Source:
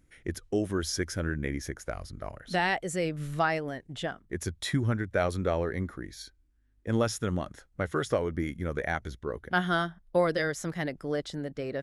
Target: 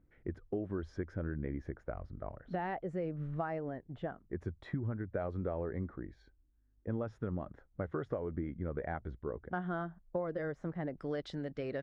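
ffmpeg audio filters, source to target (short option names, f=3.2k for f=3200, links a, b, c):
-af "asetnsamples=n=441:p=0,asendcmd='10.98 lowpass f 3800',lowpass=1.1k,acompressor=threshold=-29dB:ratio=6,volume=-3.5dB"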